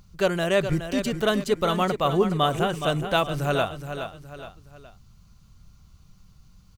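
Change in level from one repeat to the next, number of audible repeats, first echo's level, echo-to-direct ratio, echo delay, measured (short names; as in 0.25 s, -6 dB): -7.5 dB, 3, -9.0 dB, -8.0 dB, 0.419 s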